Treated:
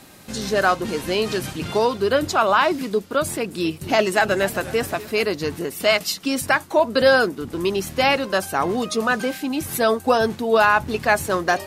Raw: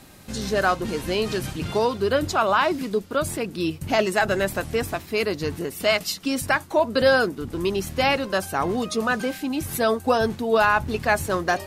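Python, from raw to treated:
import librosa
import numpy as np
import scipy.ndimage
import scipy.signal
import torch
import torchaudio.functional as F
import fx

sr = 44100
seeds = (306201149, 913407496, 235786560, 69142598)

y = fx.low_shelf(x, sr, hz=93.0, db=-11.5)
y = fx.echo_warbled(y, sr, ms=248, feedback_pct=52, rate_hz=2.8, cents=161, wet_db=-17, at=(3.27, 5.27))
y = F.gain(torch.from_numpy(y), 3.0).numpy()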